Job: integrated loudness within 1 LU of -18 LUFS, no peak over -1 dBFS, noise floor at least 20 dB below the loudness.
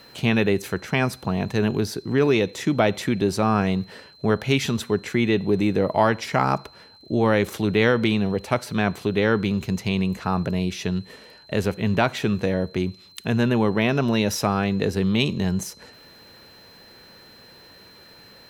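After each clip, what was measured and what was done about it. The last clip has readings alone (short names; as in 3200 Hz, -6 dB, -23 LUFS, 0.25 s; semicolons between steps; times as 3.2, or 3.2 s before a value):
ticks 39/s; steady tone 4100 Hz; tone level -49 dBFS; loudness -23.0 LUFS; peak -5.0 dBFS; loudness target -18.0 LUFS
-> de-click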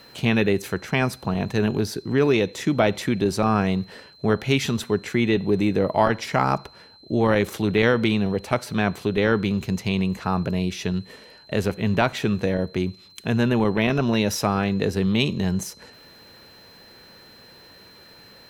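ticks 0.38/s; steady tone 4100 Hz; tone level -49 dBFS
-> notch 4100 Hz, Q 30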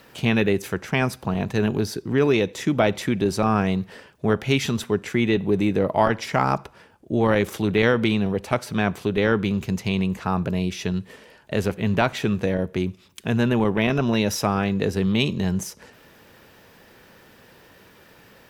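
steady tone none; loudness -23.0 LUFS; peak -5.0 dBFS; loudness target -18.0 LUFS
-> gain +5 dB; limiter -1 dBFS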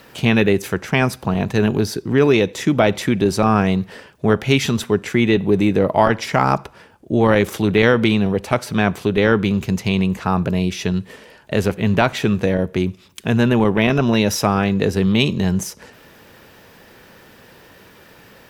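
loudness -18.0 LUFS; peak -1.0 dBFS; noise floor -47 dBFS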